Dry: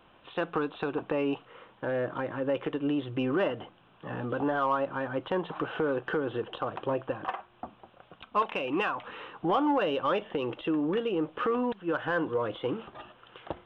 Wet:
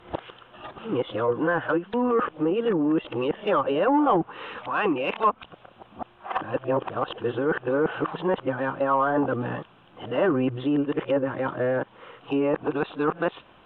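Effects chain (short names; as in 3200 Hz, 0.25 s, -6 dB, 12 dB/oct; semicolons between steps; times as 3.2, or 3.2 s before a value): whole clip reversed; treble ducked by the level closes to 1900 Hz, closed at -25 dBFS; gain +5.5 dB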